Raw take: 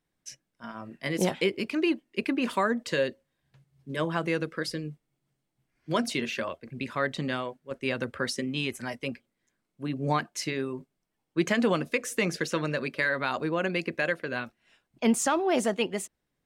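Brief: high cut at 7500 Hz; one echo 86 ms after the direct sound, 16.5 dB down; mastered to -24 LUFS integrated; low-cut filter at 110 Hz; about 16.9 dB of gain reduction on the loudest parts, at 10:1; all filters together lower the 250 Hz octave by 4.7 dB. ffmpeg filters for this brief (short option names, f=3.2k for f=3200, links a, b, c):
-af "highpass=110,lowpass=7.5k,equalizer=f=250:t=o:g=-6,acompressor=threshold=-40dB:ratio=10,aecho=1:1:86:0.15,volume=21dB"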